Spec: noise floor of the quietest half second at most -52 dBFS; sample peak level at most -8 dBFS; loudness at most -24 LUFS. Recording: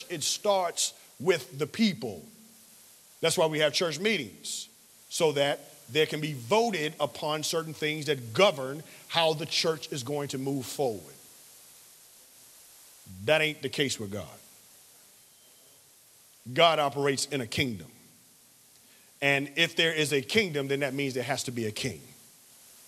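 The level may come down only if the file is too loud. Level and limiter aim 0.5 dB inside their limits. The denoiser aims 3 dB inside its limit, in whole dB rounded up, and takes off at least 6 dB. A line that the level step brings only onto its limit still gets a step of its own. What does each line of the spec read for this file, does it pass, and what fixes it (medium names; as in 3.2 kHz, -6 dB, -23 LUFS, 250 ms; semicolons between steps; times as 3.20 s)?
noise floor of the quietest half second -58 dBFS: pass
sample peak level -6.5 dBFS: fail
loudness -28.0 LUFS: pass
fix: peak limiter -8.5 dBFS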